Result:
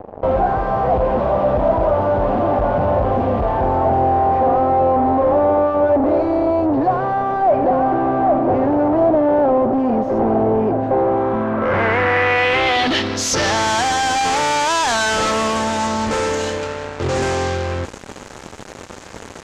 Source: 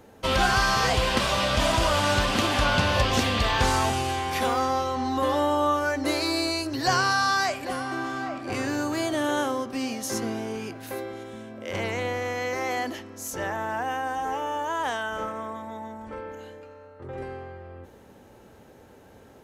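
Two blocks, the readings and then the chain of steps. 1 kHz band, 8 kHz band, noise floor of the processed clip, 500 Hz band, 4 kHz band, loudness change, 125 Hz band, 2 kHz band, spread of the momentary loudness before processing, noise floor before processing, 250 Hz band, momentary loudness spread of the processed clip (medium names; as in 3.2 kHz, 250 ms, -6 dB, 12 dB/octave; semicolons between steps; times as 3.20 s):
+9.5 dB, +7.0 dB, -36 dBFS, +13.0 dB, +3.0 dB, +8.5 dB, +7.0 dB, +5.5 dB, 16 LU, -51 dBFS, +10.5 dB, 8 LU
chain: fuzz box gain 42 dB, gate -49 dBFS; low-pass sweep 690 Hz -> 7.1 kHz, 10.88–13.70 s; trim -3.5 dB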